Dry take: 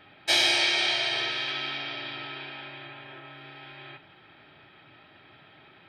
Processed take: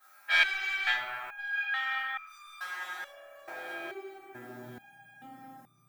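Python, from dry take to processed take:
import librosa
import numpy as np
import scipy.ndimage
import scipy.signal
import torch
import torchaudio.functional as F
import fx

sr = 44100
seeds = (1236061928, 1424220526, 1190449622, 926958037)

y = fx.median_filter(x, sr, points=25, at=(0.9, 1.51))
y = scipy.signal.sosfilt(scipy.signal.butter(2, 2500.0, 'lowpass', fs=sr, output='sos'), y)
y = fx.env_lowpass(y, sr, base_hz=1000.0, full_db=-24.5)
y = fx.rider(y, sr, range_db=5, speed_s=2.0)
y = fx.dmg_noise_colour(y, sr, seeds[0], colour='blue', level_db=-62.0)
y = fx.schmitt(y, sr, flips_db=-42.5, at=(2.26, 3.07))
y = fx.add_hum(y, sr, base_hz=60, snr_db=14)
y = fx.filter_sweep_highpass(y, sr, from_hz=1300.0, to_hz=170.0, start_s=2.4, end_s=4.99, q=2.9)
y = np.clip(y, -10.0 ** (-18.5 / 20.0), 10.0 ** (-18.5 / 20.0))
y = fx.echo_alternate(y, sr, ms=542, hz=1000.0, feedback_pct=63, wet_db=-8.5)
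y = fx.room_shoebox(y, sr, seeds[1], volume_m3=65.0, walls='mixed', distance_m=2.1)
y = fx.resonator_held(y, sr, hz=2.3, low_hz=85.0, high_hz=1200.0)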